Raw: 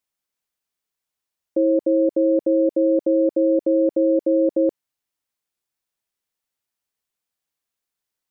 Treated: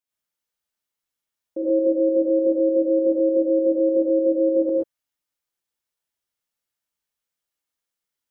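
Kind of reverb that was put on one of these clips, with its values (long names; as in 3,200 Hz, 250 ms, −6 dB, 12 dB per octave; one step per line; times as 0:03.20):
reverb whose tail is shaped and stops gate 150 ms rising, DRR −6.5 dB
level −8.5 dB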